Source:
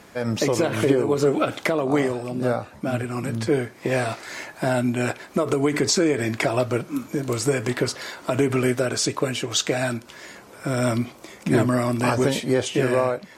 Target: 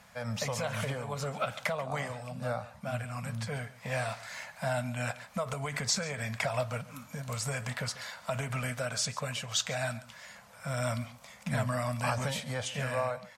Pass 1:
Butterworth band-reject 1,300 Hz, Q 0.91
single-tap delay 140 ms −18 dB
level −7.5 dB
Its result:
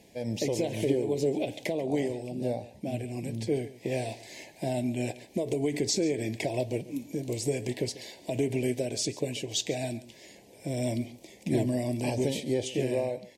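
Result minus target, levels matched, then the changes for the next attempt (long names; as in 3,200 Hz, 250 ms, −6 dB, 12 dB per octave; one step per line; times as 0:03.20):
1,000 Hz band −9.0 dB
change: Butterworth band-reject 340 Hz, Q 0.91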